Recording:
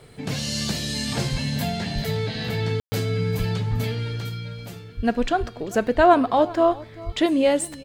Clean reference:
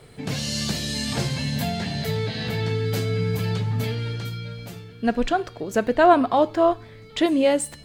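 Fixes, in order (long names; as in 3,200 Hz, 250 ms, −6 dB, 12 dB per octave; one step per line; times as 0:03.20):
high-pass at the plosives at 0:01.31/0:01.94/0:03.38/0:03.70/0:04.96/0:05.39/0:05.96/0:07.05
ambience match 0:02.80–0:02.92
echo removal 392 ms −20.5 dB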